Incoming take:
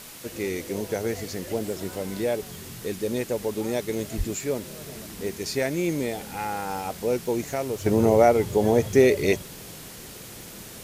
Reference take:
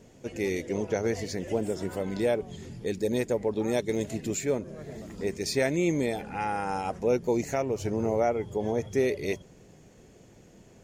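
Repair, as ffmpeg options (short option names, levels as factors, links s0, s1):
-filter_complex "[0:a]asplit=3[s0][s1][s2];[s0]afade=t=out:st=4.17:d=0.02[s3];[s1]highpass=f=140:w=0.5412,highpass=f=140:w=1.3066,afade=t=in:st=4.17:d=0.02,afade=t=out:st=4.29:d=0.02[s4];[s2]afade=t=in:st=4.29:d=0.02[s5];[s3][s4][s5]amix=inputs=3:normalize=0,afwtdn=0.0079,asetnsamples=n=441:p=0,asendcmd='7.86 volume volume -8.5dB',volume=1"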